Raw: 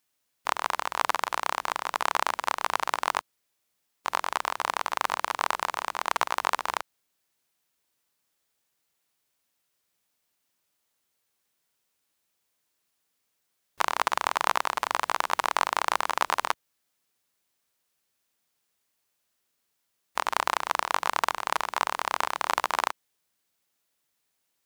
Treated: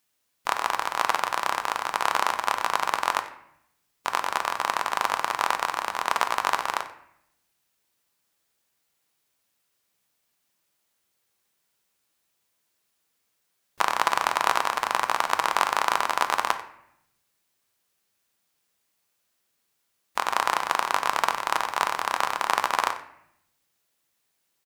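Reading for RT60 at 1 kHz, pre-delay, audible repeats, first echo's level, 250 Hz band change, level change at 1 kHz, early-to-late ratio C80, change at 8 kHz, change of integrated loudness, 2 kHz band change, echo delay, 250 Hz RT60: 0.70 s, 5 ms, 1, −17.0 dB, +3.0 dB, +2.5 dB, 13.0 dB, +2.5 dB, +2.5 dB, +3.0 dB, 92 ms, 1.0 s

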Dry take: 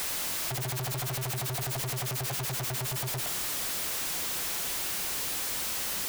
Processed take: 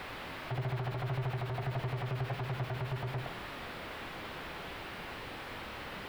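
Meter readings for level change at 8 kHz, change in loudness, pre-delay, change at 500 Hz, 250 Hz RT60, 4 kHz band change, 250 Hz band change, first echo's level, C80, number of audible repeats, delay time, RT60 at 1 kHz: −29.0 dB, −8.5 dB, 13 ms, −0.5 dB, 0.60 s, −11.5 dB, −0.5 dB, no echo audible, 15.5 dB, no echo audible, no echo audible, 0.60 s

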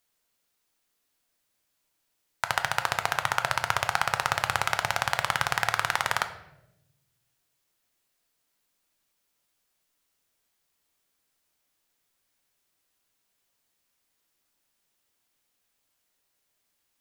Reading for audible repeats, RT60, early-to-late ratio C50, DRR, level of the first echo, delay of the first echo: no echo audible, 0.90 s, 11.5 dB, 7.5 dB, no echo audible, no echo audible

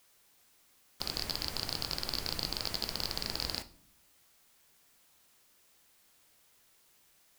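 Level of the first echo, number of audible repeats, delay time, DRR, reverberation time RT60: no echo audible, no echo audible, no echo audible, 11.0 dB, 0.60 s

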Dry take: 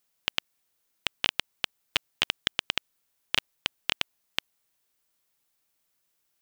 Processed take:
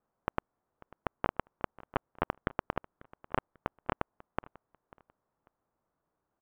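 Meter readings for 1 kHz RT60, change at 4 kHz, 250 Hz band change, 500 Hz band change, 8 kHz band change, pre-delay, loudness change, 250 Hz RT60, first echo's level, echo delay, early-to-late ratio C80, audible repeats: no reverb audible, −27.0 dB, +6.5 dB, +6.5 dB, below −35 dB, no reverb audible, −8.5 dB, no reverb audible, −21.0 dB, 543 ms, no reverb audible, 2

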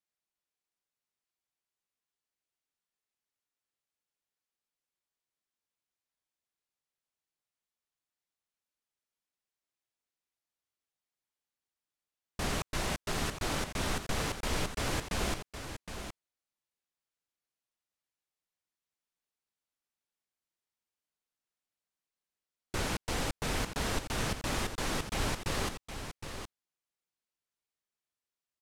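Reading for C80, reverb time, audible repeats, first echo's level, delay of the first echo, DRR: no reverb audible, no reverb audible, 1, −9.0 dB, 765 ms, no reverb audible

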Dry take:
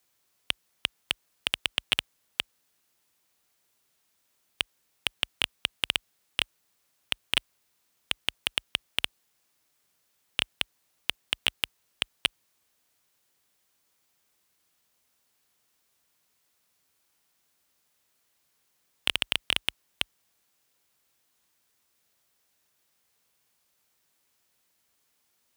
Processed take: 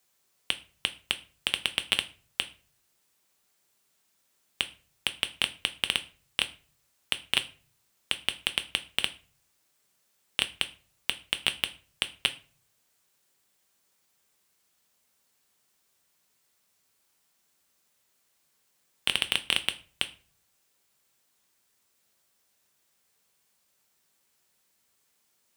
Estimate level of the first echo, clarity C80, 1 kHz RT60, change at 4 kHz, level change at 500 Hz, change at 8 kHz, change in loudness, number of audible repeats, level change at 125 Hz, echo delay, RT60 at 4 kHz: no echo audible, 22.5 dB, 0.35 s, +0.5 dB, +1.0 dB, +2.0 dB, +0.5 dB, no echo audible, 0.0 dB, no echo audible, 0.30 s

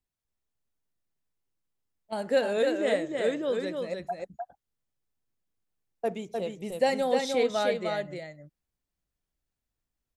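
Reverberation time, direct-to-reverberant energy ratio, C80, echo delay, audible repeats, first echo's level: no reverb audible, no reverb audible, no reverb audible, 304 ms, 1, −4.0 dB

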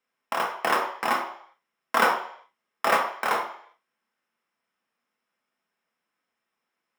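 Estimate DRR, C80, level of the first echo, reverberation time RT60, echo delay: 0.5 dB, 10.5 dB, no echo audible, 0.60 s, no echo audible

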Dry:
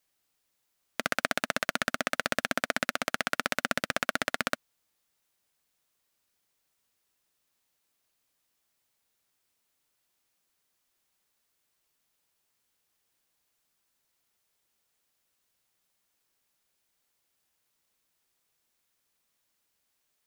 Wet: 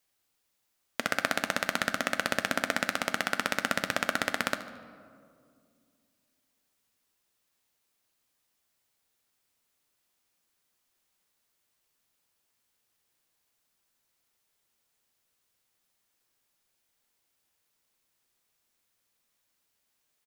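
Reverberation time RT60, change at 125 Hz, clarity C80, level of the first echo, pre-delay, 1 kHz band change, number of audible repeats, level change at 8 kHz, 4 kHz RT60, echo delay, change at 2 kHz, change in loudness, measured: 2.3 s, +1.0 dB, 13.0 dB, −15.5 dB, 4 ms, +0.5 dB, 2, +0.5 dB, 1.1 s, 74 ms, +0.5 dB, +0.5 dB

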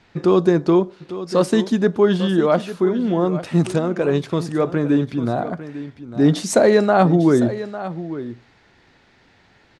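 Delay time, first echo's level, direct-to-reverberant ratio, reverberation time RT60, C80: 851 ms, −13.5 dB, no reverb audible, no reverb audible, no reverb audible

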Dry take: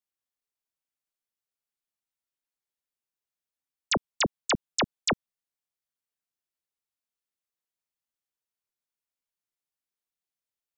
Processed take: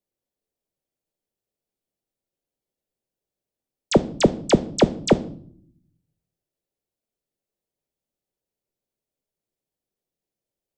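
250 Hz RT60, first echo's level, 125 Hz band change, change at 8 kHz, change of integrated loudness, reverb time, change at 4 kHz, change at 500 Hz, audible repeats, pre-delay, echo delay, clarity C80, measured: 1.0 s, no echo audible, +13.5 dB, 0.0 dB, +8.0 dB, 0.60 s, 0.0 dB, +14.0 dB, no echo audible, 5 ms, no echo audible, 22.0 dB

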